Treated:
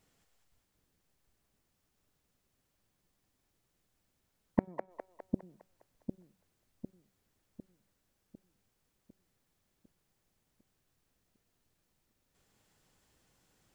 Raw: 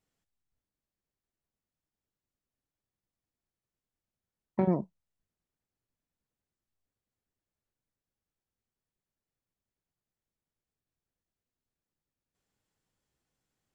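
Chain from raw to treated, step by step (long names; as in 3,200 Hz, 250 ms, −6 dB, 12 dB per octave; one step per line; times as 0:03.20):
gate with flip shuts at −24 dBFS, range −36 dB
echo with a time of its own for lows and highs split 460 Hz, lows 752 ms, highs 204 ms, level −4 dB
level +11 dB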